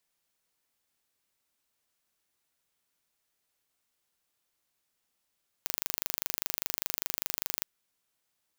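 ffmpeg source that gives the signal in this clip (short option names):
-f lavfi -i "aevalsrc='0.631*eq(mod(n,1764),0)':d=2:s=44100"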